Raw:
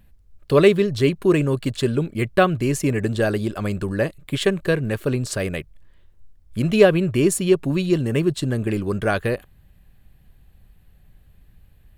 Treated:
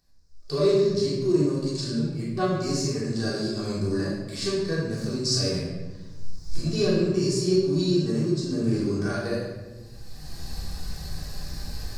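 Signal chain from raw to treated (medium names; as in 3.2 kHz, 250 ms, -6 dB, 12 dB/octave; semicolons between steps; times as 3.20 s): recorder AGC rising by 24 dB/s; FFT filter 240 Hz 0 dB, 1.1 kHz -3 dB, 3.1 kHz -16 dB, 5 kHz +12 dB, 12 kHz -20 dB; harmonic-percussive split percussive -17 dB; tilt EQ +3.5 dB/octave; simulated room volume 720 m³, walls mixed, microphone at 3.5 m; trim -7 dB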